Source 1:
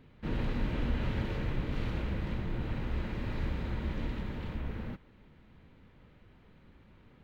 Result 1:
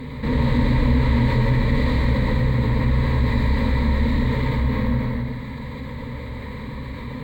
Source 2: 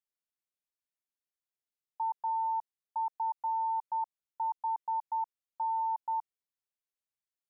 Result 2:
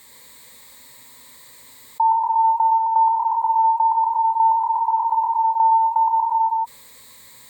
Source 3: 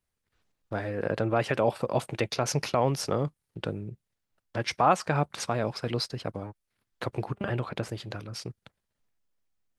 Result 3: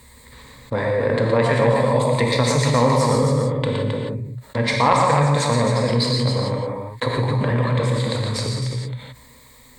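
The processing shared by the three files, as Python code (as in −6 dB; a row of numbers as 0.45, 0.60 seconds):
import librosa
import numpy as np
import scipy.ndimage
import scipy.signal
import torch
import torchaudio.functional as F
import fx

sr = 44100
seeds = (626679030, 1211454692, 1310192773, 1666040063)

p1 = fx.rev_gated(x, sr, seeds[0], gate_ms=200, shape='flat', drr_db=0.5)
p2 = fx.cheby_harmonics(p1, sr, harmonics=(3,), levels_db=(-16,), full_scale_db=-7.0)
p3 = fx.ripple_eq(p2, sr, per_octave=1.0, db=13)
p4 = p3 + fx.echo_multitap(p3, sr, ms=(117, 266), db=(-6.5, -7.0), dry=0)
p5 = fx.env_flatten(p4, sr, amount_pct=50)
y = p5 * 10.0 ** (-20 / 20.0) / np.sqrt(np.mean(np.square(p5)))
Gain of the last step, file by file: +10.5, +16.0, +5.0 decibels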